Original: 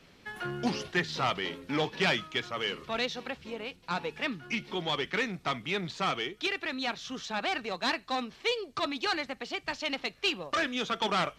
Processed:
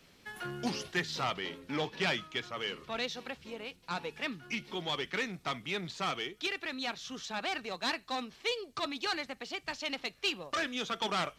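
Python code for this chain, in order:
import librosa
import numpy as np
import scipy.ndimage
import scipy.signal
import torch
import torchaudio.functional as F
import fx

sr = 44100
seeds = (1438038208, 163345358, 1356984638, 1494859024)

y = fx.high_shelf(x, sr, hz=5900.0, db=fx.steps((0.0, 10.5), (1.23, 2.5), (3.04, 7.5)))
y = y * 10.0 ** (-4.5 / 20.0)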